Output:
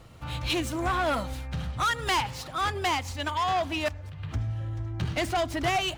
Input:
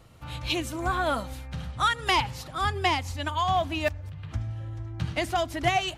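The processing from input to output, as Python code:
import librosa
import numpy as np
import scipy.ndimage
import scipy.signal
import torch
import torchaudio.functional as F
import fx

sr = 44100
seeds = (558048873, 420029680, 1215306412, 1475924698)

y = scipy.signal.medfilt(x, 3)
y = 10.0 ** (-25.0 / 20.0) * np.tanh(y / 10.0 ** (-25.0 / 20.0))
y = fx.low_shelf(y, sr, hz=240.0, db=-6.0, at=(2.2, 4.2))
y = y * 10.0 ** (3.5 / 20.0)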